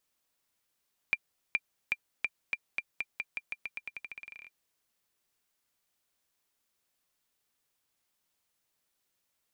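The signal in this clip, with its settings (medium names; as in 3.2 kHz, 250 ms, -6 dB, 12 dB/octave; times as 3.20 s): bouncing ball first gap 0.42 s, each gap 0.88, 2.38 kHz, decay 45 ms -14.5 dBFS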